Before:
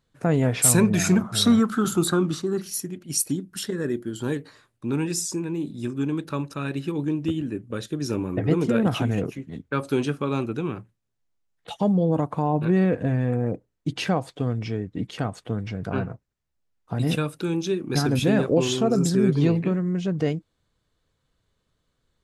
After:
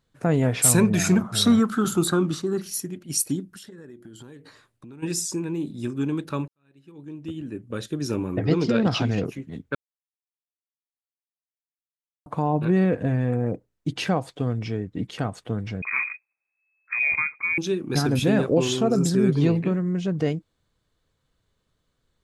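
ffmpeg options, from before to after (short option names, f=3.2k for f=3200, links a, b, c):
-filter_complex "[0:a]asplit=3[a][b][c];[a]afade=t=out:st=3.48:d=0.02[d];[b]acompressor=threshold=-40dB:ratio=10:attack=3.2:release=140:knee=1:detection=peak,afade=t=in:st=3.48:d=0.02,afade=t=out:st=5.02:d=0.02[e];[c]afade=t=in:st=5.02:d=0.02[f];[d][e][f]amix=inputs=3:normalize=0,asettb=1/sr,asplit=3[g][h][i];[g]atrim=end=8.454[j];[h]atrim=start=8.45:end=9.25,asetpts=PTS-STARTPTS,afade=t=in:d=0.004:c=qsin,afade=t=out:st=0.796:d=0.004:c=qsin,lowpass=f=4.9k:t=q:w=5.4[k];[i]atrim=start=9.246[l];[j][k]acrossfade=d=0.004:c1=hsin:c2=qsin[m];[m][l]acrossfade=d=0.004:c1=qsin:c2=hsin,asettb=1/sr,asplit=3[n][o][p];[n]atrim=end=15.824[q];[o]atrim=start=15.82:end=17.58,asetpts=PTS-STARTPTS,afade=t=in:d=0.004:c=qsin,afade=t=out:st=1.756:d=0.004:c=qsin,lowpass=f=2.2k:t=q:w=0.5098,lowpass=f=2.2k:t=q:w=0.6013,lowpass=f=2.2k:t=q:w=0.9,lowpass=f=2.2k:t=q:w=2.563,afreqshift=-2600[r];[p]atrim=start=17.576[s];[q][r]acrossfade=d=0.004:c1=hsin:c2=qsin[t];[t][s]acrossfade=d=0.004:c1=qsin:c2=hsin,asplit=4[u][v][w][x];[u]atrim=end=6.48,asetpts=PTS-STARTPTS,afade=t=out:st=6.476:d=0.004:c=hsin[y];[v]atrim=start=6.48:end=9.75,asetpts=PTS-STARTPTS,afade=t=in:d=1.31:c=qua,afade=t=out:st=3.266:d=0.004:c=hsin[z];[w]atrim=start=9.75:end=12.26,asetpts=PTS-STARTPTS,volume=0[aa];[x]atrim=start=12.26,asetpts=PTS-STARTPTS,afade=t=in:d=0.004:c=hsin[ab];[y][z][aa][ab]concat=n=4:v=0:a=1"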